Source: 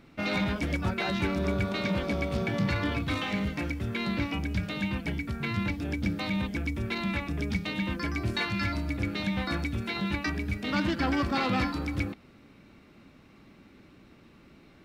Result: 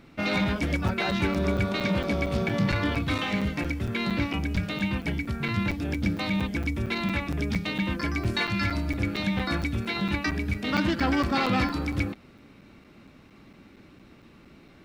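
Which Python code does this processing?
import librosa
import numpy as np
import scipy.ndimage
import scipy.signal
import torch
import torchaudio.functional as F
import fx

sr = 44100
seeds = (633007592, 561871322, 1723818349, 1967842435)

y = fx.buffer_crackle(x, sr, first_s=0.88, period_s=0.23, block=256, kind='zero')
y = y * librosa.db_to_amplitude(3.0)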